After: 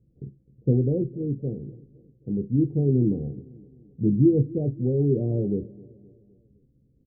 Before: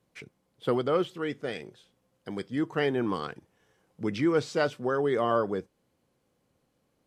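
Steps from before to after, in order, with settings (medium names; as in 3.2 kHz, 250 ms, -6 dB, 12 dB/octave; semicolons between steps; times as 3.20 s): Gaussian low-pass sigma 24 samples; bass shelf 170 Hz +11.5 dB; doubling 15 ms -7 dB; feedback delay 259 ms, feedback 52%, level -21.5 dB; on a send at -9 dB: reverberation RT60 0.25 s, pre-delay 3 ms; on the sum: trim +7 dB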